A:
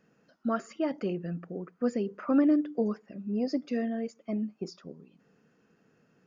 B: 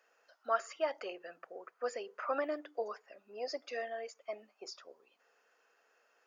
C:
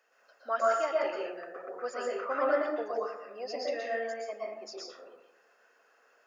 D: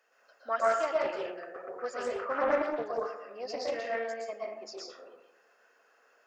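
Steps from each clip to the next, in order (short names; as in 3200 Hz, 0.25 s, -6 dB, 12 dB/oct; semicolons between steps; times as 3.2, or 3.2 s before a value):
HPF 580 Hz 24 dB/oct; gain +1.5 dB
plate-style reverb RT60 0.84 s, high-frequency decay 0.4×, pre-delay 0.105 s, DRR -5 dB
Doppler distortion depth 0.22 ms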